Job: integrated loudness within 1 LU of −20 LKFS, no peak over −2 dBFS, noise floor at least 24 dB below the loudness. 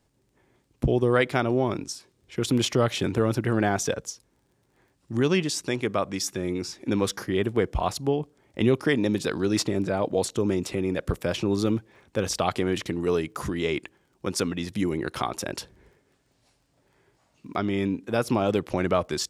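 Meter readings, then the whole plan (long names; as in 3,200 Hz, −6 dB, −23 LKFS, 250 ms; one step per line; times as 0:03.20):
crackle rate 17 per second; integrated loudness −26.5 LKFS; sample peak −7.0 dBFS; target loudness −20.0 LKFS
→ click removal
level +6.5 dB
brickwall limiter −2 dBFS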